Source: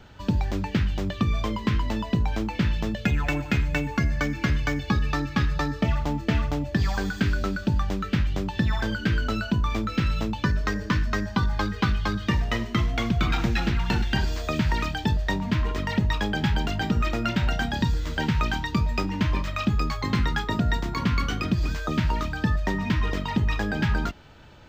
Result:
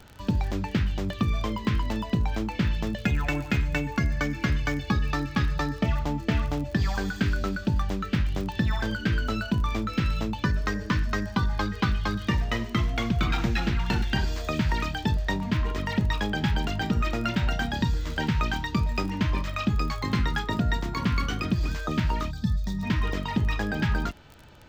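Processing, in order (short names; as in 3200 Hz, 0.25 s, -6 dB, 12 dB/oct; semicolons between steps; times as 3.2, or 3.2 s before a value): crackle 31/s -32 dBFS; spectral gain 22.31–22.83, 250–3300 Hz -15 dB; gain -1.5 dB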